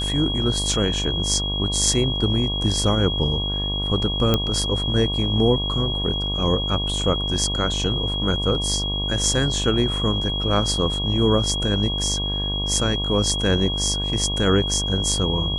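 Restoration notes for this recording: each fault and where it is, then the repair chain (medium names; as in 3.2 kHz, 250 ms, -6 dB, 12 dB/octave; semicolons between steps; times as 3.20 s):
buzz 50 Hz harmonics 23 -27 dBFS
whine 3.3 kHz -25 dBFS
4.34 s: pop -5 dBFS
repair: de-click; de-hum 50 Hz, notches 23; band-stop 3.3 kHz, Q 30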